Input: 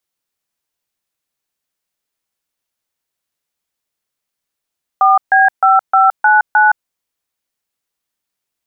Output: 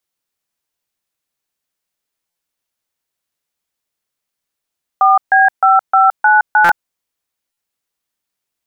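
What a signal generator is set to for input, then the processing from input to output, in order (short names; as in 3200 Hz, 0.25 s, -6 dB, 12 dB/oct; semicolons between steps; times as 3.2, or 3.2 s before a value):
DTMF "4B5599", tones 0.167 s, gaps 0.141 s, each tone -9 dBFS
stuck buffer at 2.3/6.64/7.52, samples 256, times 8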